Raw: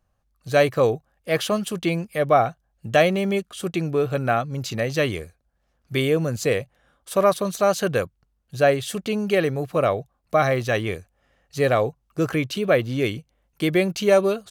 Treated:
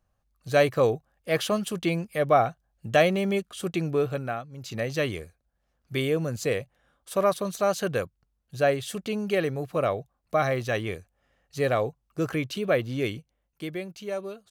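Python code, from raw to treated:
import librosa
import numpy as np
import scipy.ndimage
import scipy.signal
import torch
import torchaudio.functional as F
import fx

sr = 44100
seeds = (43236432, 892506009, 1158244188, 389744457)

y = fx.gain(x, sr, db=fx.line((4.03, -3.0), (4.51, -15.0), (4.77, -5.0), (13.13, -5.0), (13.87, -15.5)))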